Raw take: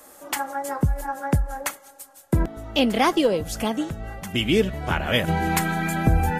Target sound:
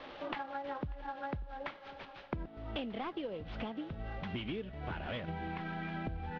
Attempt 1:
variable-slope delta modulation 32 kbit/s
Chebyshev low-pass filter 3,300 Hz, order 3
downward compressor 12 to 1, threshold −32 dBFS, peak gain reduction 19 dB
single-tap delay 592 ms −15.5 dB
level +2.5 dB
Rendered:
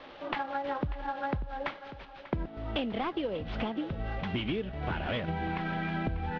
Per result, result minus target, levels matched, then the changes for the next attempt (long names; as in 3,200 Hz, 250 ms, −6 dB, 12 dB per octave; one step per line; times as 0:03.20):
downward compressor: peak gain reduction −7 dB; echo-to-direct +9 dB
change: downward compressor 12 to 1, threshold −39.5 dBFS, peak gain reduction 25.5 dB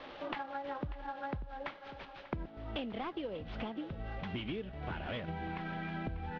echo-to-direct +9 dB
change: single-tap delay 592 ms −24.5 dB